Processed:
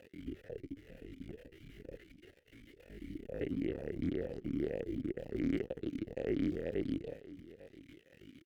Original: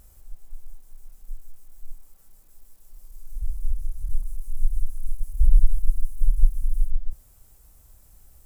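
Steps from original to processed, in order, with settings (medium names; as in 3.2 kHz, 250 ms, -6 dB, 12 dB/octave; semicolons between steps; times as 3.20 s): block-companded coder 7-bit; fuzz box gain 38 dB, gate -47 dBFS; pitch shift +11 st; on a send: delay 849 ms -17.5 dB; on the sum: talking filter e-i 2.1 Hz; trim +1.5 dB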